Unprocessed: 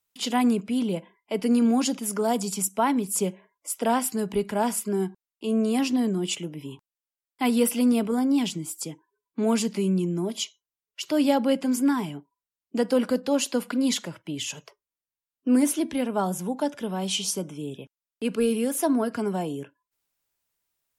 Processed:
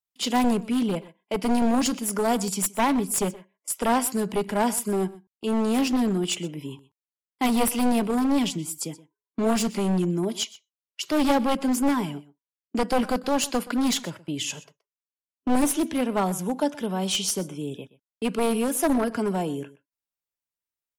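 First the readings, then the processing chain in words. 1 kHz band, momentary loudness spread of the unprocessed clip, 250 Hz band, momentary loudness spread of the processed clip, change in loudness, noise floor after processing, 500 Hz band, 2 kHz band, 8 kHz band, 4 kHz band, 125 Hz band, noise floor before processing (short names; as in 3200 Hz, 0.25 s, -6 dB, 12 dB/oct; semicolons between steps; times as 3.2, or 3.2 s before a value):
+3.0 dB, 13 LU, 0.0 dB, 11 LU, +0.5 dB, under -85 dBFS, 0.0 dB, +3.0 dB, +1.5 dB, +2.0 dB, +1.5 dB, under -85 dBFS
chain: one-sided fold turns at -21 dBFS; gate -44 dBFS, range -16 dB; echo 0.124 s -19.5 dB; gain +2 dB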